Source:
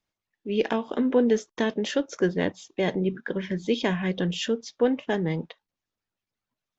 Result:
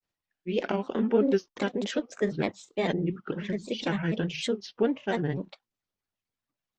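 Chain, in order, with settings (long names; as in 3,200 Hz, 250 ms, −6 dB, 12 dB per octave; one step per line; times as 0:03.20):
granular cloud, spray 26 ms, pitch spread up and down by 3 semitones
level −1.5 dB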